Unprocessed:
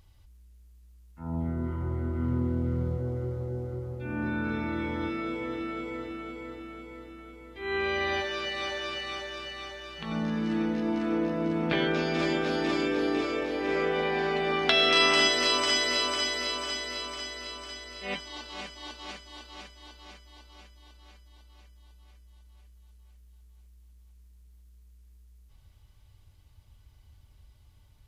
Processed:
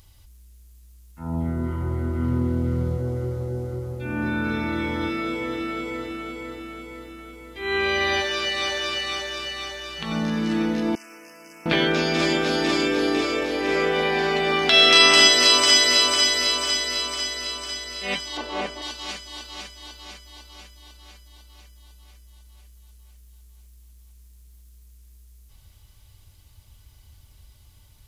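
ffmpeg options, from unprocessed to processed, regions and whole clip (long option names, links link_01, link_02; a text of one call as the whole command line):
ffmpeg -i in.wav -filter_complex "[0:a]asettb=1/sr,asplit=3[link_01][link_02][link_03];[link_01]atrim=end=10.954[link_04];[link_02]atrim=start=10.95:end=11.66,asetpts=PTS-STARTPTS,afade=type=in:duration=0.004:curve=qsin,afade=type=out:start_time=0.706:duration=0.004:curve=qsin,asuperstop=centerf=3700:order=20:qfactor=2.1,aderivative[link_05];[link_03]atrim=start=11.656[link_06];[link_04][link_05]acrossfade=duration=0.004:curve1=hsin:curve2=qsin[link_07];[link_07][link_06]acrossfade=duration=0.004:curve1=qsin:curve2=hsin,asettb=1/sr,asplit=3[link_08][link_09][link_10];[link_08]atrim=end=18.374[link_11];[link_09]atrim=start=18.37:end=18.82,asetpts=PTS-STARTPTS,afade=type=in:duration=0.004:curve=qsin,afade=type=out:start_time=0.446:duration=0.004:curve=qsin,acrossover=split=3100[link_12][link_13];[link_13]acompressor=threshold=-55dB:ratio=4:attack=1:release=60[link_14];[link_12][link_14]amix=inputs=2:normalize=0,equalizer=frequency=480:width=0.49:gain=11[link_15];[link_10]atrim=start=18.816[link_16];[link_11][link_15]acrossfade=duration=0.004:curve1=hsin:curve2=qsin[link_17];[link_17][link_16]acrossfade=duration=0.004:curve1=qsin:curve2=hsin,highshelf=frequency=3900:gain=11,alimiter=level_in=6dB:limit=-1dB:release=50:level=0:latency=1,volume=-1dB" out.wav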